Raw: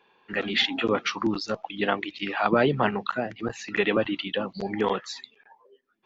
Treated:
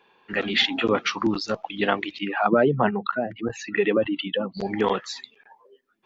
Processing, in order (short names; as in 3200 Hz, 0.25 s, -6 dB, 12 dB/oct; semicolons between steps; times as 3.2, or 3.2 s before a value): 2.19–4.57 spectral contrast raised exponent 1.6; gain +2.5 dB